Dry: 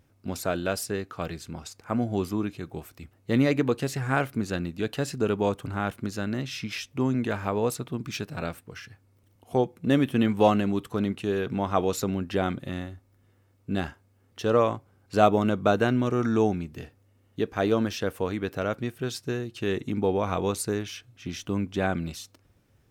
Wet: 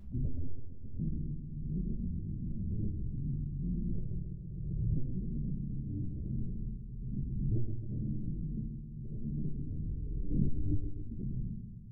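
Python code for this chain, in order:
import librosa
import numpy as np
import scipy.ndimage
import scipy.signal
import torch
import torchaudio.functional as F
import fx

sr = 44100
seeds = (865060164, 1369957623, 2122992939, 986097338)

y = fx.cycle_switch(x, sr, every=3, mode='inverted')
y = fx.noise_reduce_blind(y, sr, reduce_db=17)
y = scipy.signal.sosfilt(scipy.signal.cheby2(4, 70, 890.0, 'lowpass', fs=sr, output='sos'), y)
y = fx.low_shelf(y, sr, hz=130.0, db=-2.0)
y = fx.rider(y, sr, range_db=5, speed_s=0.5)
y = fx.rotary_switch(y, sr, hz=1.0, then_hz=5.5, switch_at_s=6.2)
y = fx.stretch_vocoder(y, sr, factor=0.52)
y = fx.echo_feedback(y, sr, ms=132, feedback_pct=57, wet_db=-7.0)
y = fx.room_shoebox(y, sr, seeds[0], volume_m3=92.0, walls='mixed', distance_m=1.2)
y = fx.pre_swell(y, sr, db_per_s=30.0)
y = F.gain(torch.from_numpy(y), -7.5).numpy()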